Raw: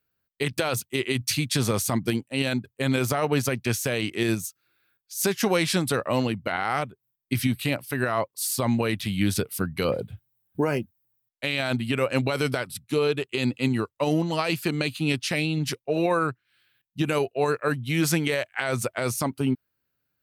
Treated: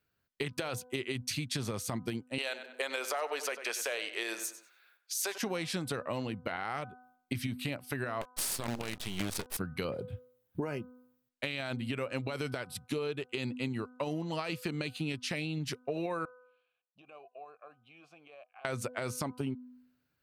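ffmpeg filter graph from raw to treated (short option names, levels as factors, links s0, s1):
-filter_complex "[0:a]asettb=1/sr,asplit=3[s0][s1][s2];[s0]atrim=end=2.384[s3];[s1]atrim=start=2.38:end=5.38,asetpts=PTS-STARTPTS,afade=t=in:d=0.004:c=qsin,afade=t=out:st=2.996:d=0.004:c=qsin,acontrast=25,highpass=f=490:w=0.5412,highpass=f=490:w=1.3066,asplit=2[s4][s5];[s5]adelay=96,lowpass=f=4300:p=1,volume=0.237,asplit=2[s6][s7];[s7]adelay=96,lowpass=f=4300:p=1,volume=0.28,asplit=2[s8][s9];[s9]adelay=96,lowpass=f=4300:p=1,volume=0.28[s10];[s4][s6][s8][s10]amix=inputs=4:normalize=0,atrim=end_sample=132300[s11];[s2]atrim=start=5.376[s12];[s3][s11]acrossfade=d=0.004:c1=hsin:c2=qsin[s13];[s13][s12]acrossfade=d=0.004:c1=qsin:c2=hsin,asettb=1/sr,asplit=3[s14][s15][s16];[s14]atrim=end=8.214[s17];[s15]atrim=start=8.21:end=9.57,asetpts=PTS-STARTPTS,afade=t=in:d=0.004:c=qsin,afade=t=out:st=1.356:d=0.004:c=qsin,highshelf=f=4000:g=11,acrusher=bits=4:dc=4:mix=0:aa=0.000001[s18];[s16]atrim=start=9.566[s19];[s17][s18]acrossfade=d=0.004:c1=hsin:c2=qsin[s20];[s20][s19]acrossfade=d=0.004:c1=qsin:c2=hsin,asettb=1/sr,asplit=3[s21][s22][s23];[s21]atrim=end=16.254[s24];[s22]atrim=start=16.25:end=18.65,asetpts=PTS-STARTPTS,afade=t=in:d=0.004:c=qsin,afade=t=out:st=2.396:d=0.004:c=qsin,acompressor=threshold=0.0112:ratio=5:attack=3.2:release=140:knee=1:detection=peak,asplit=3[s25][s26][s27];[s25]bandpass=f=730:t=q:w=8,volume=1[s28];[s26]bandpass=f=1090:t=q:w=8,volume=0.501[s29];[s27]bandpass=f=2440:t=q:w=8,volume=0.355[s30];[s28][s29][s30]amix=inputs=3:normalize=0[s31];[s23]atrim=start=18.646[s32];[s24][s31]acrossfade=d=0.004:c1=hsin:c2=qsin[s33];[s33][s32]acrossfade=d=0.004:c1=qsin:c2=hsin,highshelf=f=11000:g=-10,bandreject=f=250.2:t=h:w=4,bandreject=f=500.4:t=h:w=4,bandreject=f=750.6:t=h:w=4,bandreject=f=1000.8:t=h:w=4,bandreject=f=1251:t=h:w=4,bandreject=f=1501.2:t=h:w=4,acompressor=threshold=0.0178:ratio=5,volume=1.19"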